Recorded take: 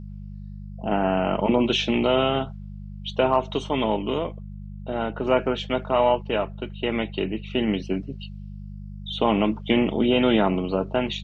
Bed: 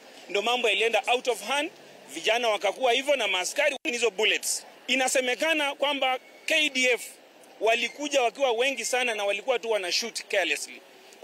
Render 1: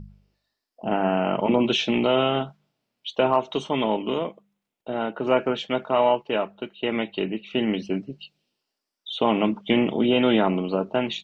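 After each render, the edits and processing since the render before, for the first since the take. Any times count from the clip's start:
hum removal 50 Hz, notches 4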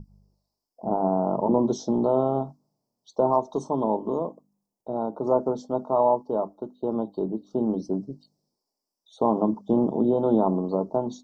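elliptic band-stop filter 1,000–5,100 Hz, stop band 70 dB
mains-hum notches 50/100/150/200/250/300 Hz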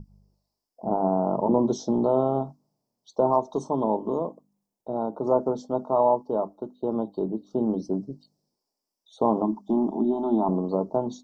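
0:09.42–0:10.49: phaser with its sweep stopped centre 500 Hz, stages 6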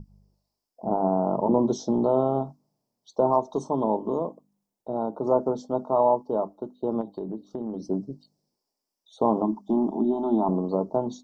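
0:07.01–0:07.87: downward compressor, threshold −28 dBFS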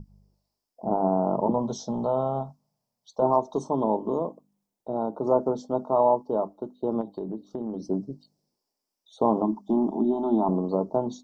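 0:01.50–0:03.22: parametric band 330 Hz −14 dB 0.69 octaves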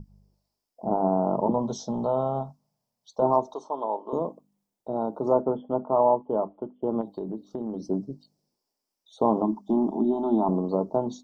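0:03.54–0:04.13: band-pass filter 630–3,800 Hz
0:05.41–0:07.03: linear-phase brick-wall low-pass 3,500 Hz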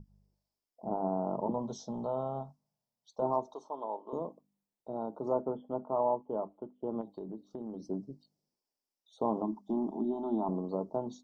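level −9 dB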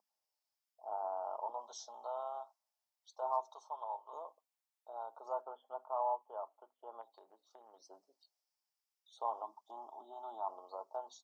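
high-pass filter 770 Hz 24 dB per octave
notch filter 1,000 Hz, Q 22

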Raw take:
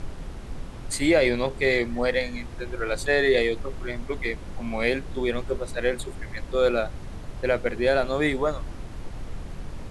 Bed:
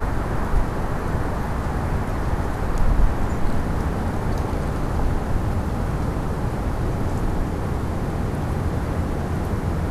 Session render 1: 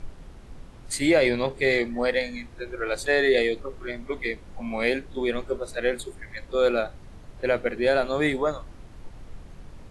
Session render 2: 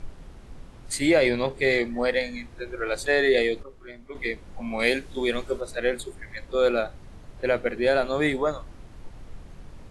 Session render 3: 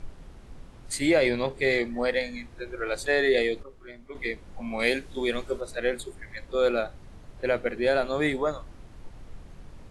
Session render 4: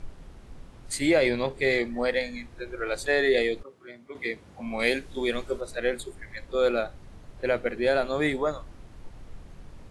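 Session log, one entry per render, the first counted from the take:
noise reduction from a noise print 8 dB
0:03.63–0:04.15: clip gain −9.5 dB; 0:04.79–0:05.61: high-shelf EQ 3,300 Hz +9.5 dB
level −2 dB
0:03.62–0:04.64: high-pass filter 140 Hz → 64 Hz 24 dB per octave

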